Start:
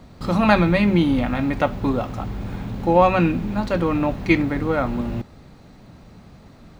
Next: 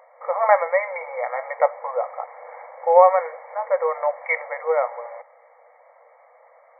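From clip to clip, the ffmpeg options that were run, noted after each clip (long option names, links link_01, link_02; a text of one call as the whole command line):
ffmpeg -i in.wav -af "afftfilt=real='re*between(b*sr/4096,470,2300)':imag='im*between(b*sr/4096,470,2300)':win_size=4096:overlap=0.75,equalizer=frequency=1500:width=5:gain=-14.5,volume=3.5dB" out.wav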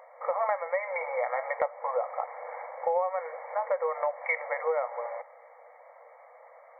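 ffmpeg -i in.wav -af "acompressor=threshold=-25dB:ratio=8" out.wav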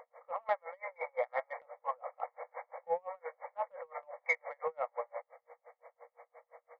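ffmpeg -i in.wav -af "asoftclip=type=tanh:threshold=-16.5dB,aeval=exprs='val(0)+0.00141*sin(2*PI*480*n/s)':channel_layout=same,aeval=exprs='val(0)*pow(10,-38*(0.5-0.5*cos(2*PI*5.8*n/s))/20)':channel_layout=same" out.wav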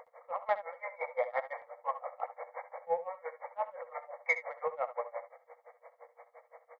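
ffmpeg -i in.wav -af "aecho=1:1:66|76:0.188|0.126,volume=1.5dB" out.wav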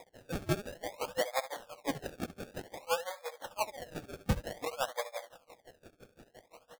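ffmpeg -i in.wav -af "acrusher=samples=30:mix=1:aa=0.000001:lfo=1:lforange=30:lforate=0.54" out.wav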